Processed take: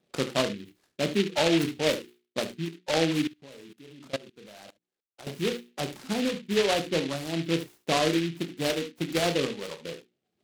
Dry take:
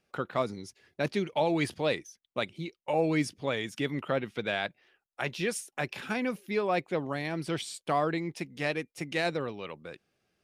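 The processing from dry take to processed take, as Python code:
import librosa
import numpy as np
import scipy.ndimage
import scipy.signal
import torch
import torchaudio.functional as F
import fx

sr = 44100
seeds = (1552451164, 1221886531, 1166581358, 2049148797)

y = fx.dereverb_blind(x, sr, rt60_s=0.79)
y = scipy.signal.sosfilt(scipy.signal.butter(2, 240.0, 'highpass', fs=sr, output='sos'), y)
y = fx.tilt_eq(y, sr, slope=-4.5)
y = fx.hum_notches(y, sr, base_hz=60, count=8)
y = fx.doubler(y, sr, ms=30.0, db=-9.5)
y = y + 10.0 ** (-12.5 / 20.0) * np.pad(y, (int(72 * sr / 1000.0), 0))[:len(y)]
y = fx.level_steps(y, sr, step_db=22, at=(3.27, 5.27))
y = fx.high_shelf(y, sr, hz=4700.0, db=-11.5)
y = fx.rider(y, sr, range_db=4, speed_s=2.0)
y = fx.noise_mod_delay(y, sr, seeds[0], noise_hz=2700.0, depth_ms=0.14)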